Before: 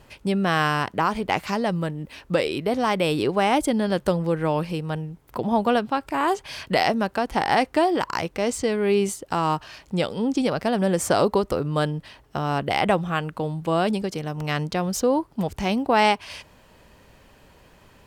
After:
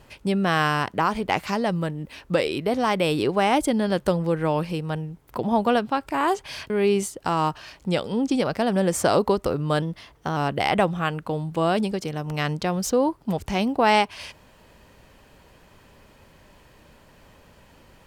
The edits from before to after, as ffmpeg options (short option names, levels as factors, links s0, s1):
-filter_complex "[0:a]asplit=4[s0][s1][s2][s3];[s0]atrim=end=6.702[s4];[s1]atrim=start=8.758:end=11.884[s5];[s2]atrim=start=11.88:end=12.47,asetpts=PTS-STARTPTS,asetrate=47628,aresample=44100[s6];[s3]atrim=start=12.466[s7];[s4][s5]acrossfade=d=0.004:c1=hsin:c2=hsin[s8];[s8][s6]acrossfade=d=0.004:c1=hsin:c2=hsin[s9];[s9][s7]acrossfade=d=0.004:c1=hsin:c2=hsin"